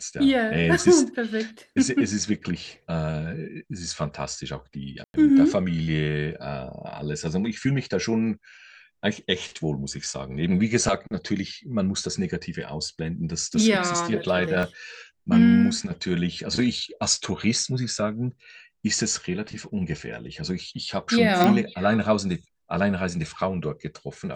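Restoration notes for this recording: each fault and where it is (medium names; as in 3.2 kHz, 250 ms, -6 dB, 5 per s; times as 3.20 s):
5.04–5.14 s: dropout 101 ms
14.63 s: dropout 2.3 ms
21.44 s: pop -8 dBFS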